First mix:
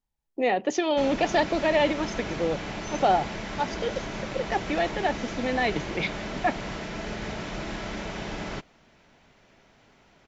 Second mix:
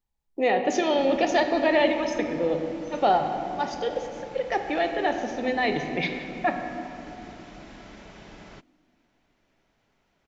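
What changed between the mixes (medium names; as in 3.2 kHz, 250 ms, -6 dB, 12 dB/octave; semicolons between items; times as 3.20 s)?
background -12.0 dB; reverb: on, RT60 3.0 s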